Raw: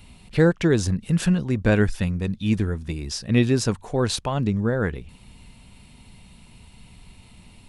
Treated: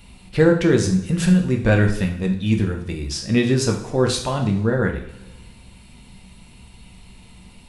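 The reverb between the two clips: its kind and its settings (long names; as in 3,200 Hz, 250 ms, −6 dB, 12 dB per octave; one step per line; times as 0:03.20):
coupled-rooms reverb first 0.52 s, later 1.5 s, from −16 dB, DRR 2 dB
level +1 dB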